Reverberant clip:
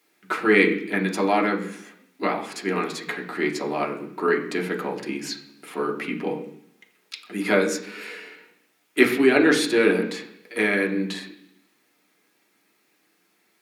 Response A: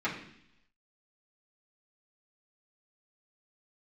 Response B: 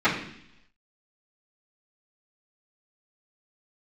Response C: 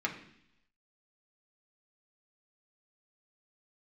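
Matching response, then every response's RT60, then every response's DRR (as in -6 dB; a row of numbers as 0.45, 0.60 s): C; 0.70, 0.70, 0.70 s; -9.5, -18.0, -0.5 dB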